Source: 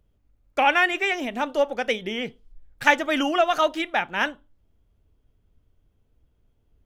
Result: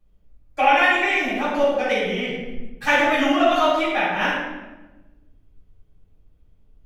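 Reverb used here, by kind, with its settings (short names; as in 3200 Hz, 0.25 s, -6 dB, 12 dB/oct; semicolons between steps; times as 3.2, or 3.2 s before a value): shoebox room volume 580 m³, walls mixed, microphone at 8.5 m; gain -12 dB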